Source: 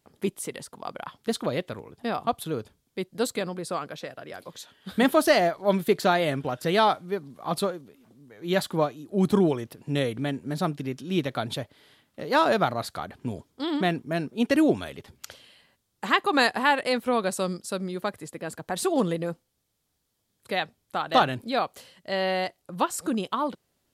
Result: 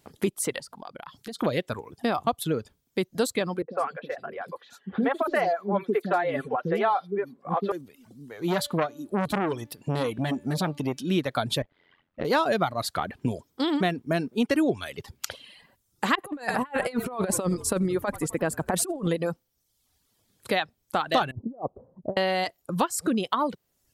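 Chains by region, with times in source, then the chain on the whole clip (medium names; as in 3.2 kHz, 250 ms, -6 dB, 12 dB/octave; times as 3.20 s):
0.59–1.39 s: peaking EQ 4.6 kHz +4 dB 0.39 oct + hum notches 60/120/180 Hz + compression 4:1, threshold -46 dBFS
3.62–7.72 s: three-band isolator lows -15 dB, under 200 Hz, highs -17 dB, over 2.3 kHz + comb of notches 310 Hz + three bands offset in time lows, mids, highs 60/140 ms, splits 370/3800 Hz
8.48–11.03 s: de-hum 290.1 Hz, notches 16 + transformer saturation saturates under 1.3 kHz
11.62–12.25 s: low-pass 2.5 kHz + AM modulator 88 Hz, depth 85%
16.15–19.07 s: peaking EQ 3.9 kHz -9 dB 1.1 oct + frequency-shifting echo 85 ms, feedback 60%, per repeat -49 Hz, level -19 dB + compressor with a negative ratio -30 dBFS, ratio -0.5
21.31–22.17 s: Bessel low-pass 540 Hz, order 8 + compressor with a negative ratio -37 dBFS, ratio -0.5
whole clip: reverb removal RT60 0.76 s; compression 3:1, threshold -32 dBFS; trim +8.5 dB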